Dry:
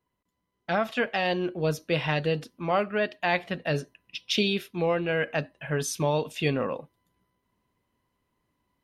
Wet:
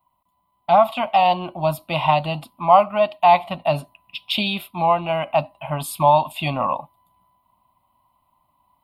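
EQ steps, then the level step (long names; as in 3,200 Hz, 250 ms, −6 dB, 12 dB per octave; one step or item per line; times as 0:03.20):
flat-topped bell 790 Hz +13 dB 1.2 octaves
high-shelf EQ 7,700 Hz +10.5 dB
phaser with its sweep stopped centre 1,700 Hz, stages 6
+4.5 dB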